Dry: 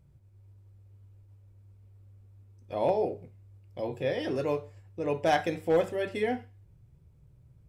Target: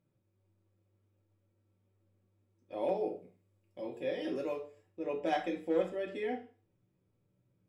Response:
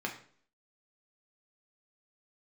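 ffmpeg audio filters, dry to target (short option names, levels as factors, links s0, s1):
-filter_complex "[0:a]asettb=1/sr,asplit=3[s0][s1][s2];[s0]atrim=end=2.734[s3];[s1]atrim=start=2.73:end=4.89,asetpts=PTS-STARTPTS,afade=t=in:d=0.004:c=qsin,afade=t=out:st=2.156:d=0.004:c=qsin,highshelf=f=8100:g=12[s4];[s2]atrim=start=4.886[s5];[s3][s4]acrossfade=d=0.004:c1=hsin:c2=qsin[s6];[s6][s5]acrossfade=d=0.004:c1=qsin:c2=hsin[s7];[1:a]atrim=start_sample=2205,asetrate=66150,aresample=44100[s8];[s7][s8]afir=irnorm=-1:irlink=0,volume=0.376"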